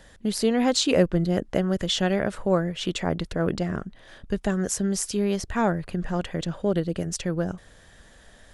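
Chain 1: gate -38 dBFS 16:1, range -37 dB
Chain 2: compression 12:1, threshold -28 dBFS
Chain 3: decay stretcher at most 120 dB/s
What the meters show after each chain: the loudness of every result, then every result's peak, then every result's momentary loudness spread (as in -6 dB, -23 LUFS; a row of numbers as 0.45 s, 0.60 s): -25.5 LUFS, -33.5 LUFS, -25.5 LUFS; -6.0 dBFS, -14.0 dBFS, -6.0 dBFS; 8 LU, 13 LU, 8 LU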